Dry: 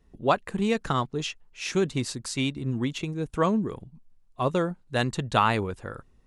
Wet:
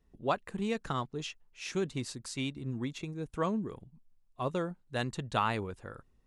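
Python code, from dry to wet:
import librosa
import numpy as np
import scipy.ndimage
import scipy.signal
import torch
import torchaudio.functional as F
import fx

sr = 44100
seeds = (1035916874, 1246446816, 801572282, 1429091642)

y = fx.notch(x, sr, hz=3000.0, q=7.7, at=(2.71, 3.24))
y = y * librosa.db_to_amplitude(-8.0)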